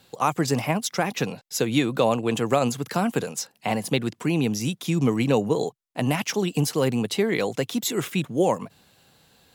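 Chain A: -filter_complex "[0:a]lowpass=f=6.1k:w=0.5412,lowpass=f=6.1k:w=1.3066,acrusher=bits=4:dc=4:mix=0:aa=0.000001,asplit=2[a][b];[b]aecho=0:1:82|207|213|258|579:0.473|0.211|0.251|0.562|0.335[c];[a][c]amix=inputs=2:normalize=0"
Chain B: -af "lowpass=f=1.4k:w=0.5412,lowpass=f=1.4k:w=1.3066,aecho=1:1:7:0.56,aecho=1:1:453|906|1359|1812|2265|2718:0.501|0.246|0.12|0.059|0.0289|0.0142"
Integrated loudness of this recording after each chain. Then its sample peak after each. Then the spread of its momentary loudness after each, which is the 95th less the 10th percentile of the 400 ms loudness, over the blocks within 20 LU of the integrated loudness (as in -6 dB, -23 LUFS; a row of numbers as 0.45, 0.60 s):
-22.5, -23.0 LUFS; -3.5, -5.5 dBFS; 7, 7 LU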